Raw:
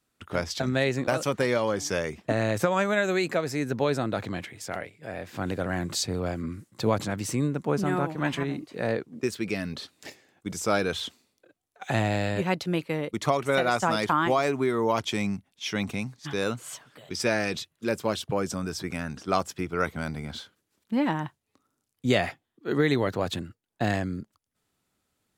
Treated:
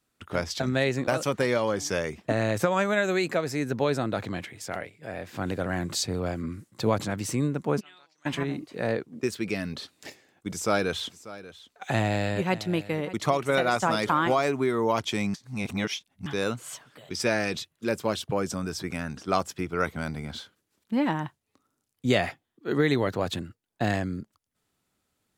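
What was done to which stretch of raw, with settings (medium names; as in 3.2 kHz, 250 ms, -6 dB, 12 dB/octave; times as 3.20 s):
7.79–8.25 s: band-pass filter 2.4 kHz -> 7.2 kHz, Q 6.9
10.51–14.35 s: delay 590 ms -17 dB
15.34–16.26 s: reverse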